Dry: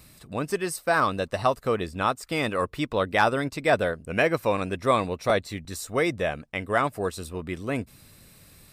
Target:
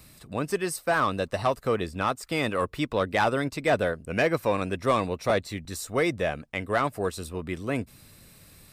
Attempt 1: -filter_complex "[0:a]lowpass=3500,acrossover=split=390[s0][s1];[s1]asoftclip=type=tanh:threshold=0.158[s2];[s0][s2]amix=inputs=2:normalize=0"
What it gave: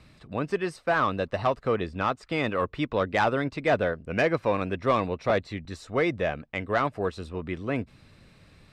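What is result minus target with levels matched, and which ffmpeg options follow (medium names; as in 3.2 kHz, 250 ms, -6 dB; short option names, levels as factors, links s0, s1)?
4 kHz band -2.5 dB
-filter_complex "[0:a]acrossover=split=390[s0][s1];[s1]asoftclip=type=tanh:threshold=0.158[s2];[s0][s2]amix=inputs=2:normalize=0"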